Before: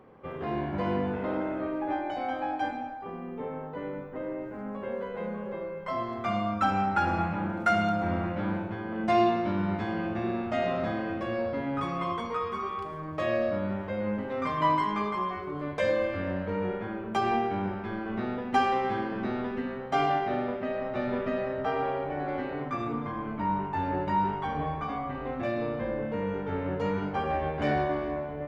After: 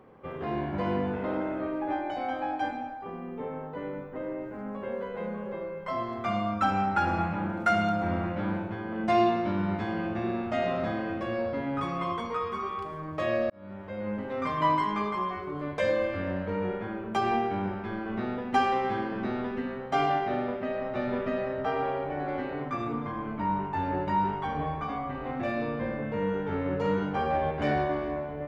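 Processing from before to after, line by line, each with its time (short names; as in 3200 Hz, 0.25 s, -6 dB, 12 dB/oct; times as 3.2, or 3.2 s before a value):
13.5–14.6 fade in equal-power
25.19–27.51 doubler 47 ms -6 dB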